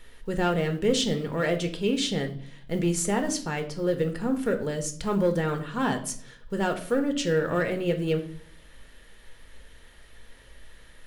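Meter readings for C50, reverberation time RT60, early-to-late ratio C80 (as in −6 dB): 12.5 dB, 0.55 s, 16.0 dB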